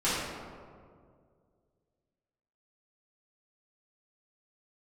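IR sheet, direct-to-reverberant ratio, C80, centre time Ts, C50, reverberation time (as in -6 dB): -13.5 dB, 0.5 dB, 113 ms, -2.0 dB, 2.1 s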